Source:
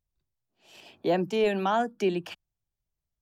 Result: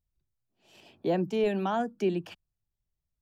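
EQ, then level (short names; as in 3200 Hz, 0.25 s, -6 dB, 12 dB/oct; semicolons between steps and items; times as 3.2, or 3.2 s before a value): low shelf 410 Hz +8 dB; -6.0 dB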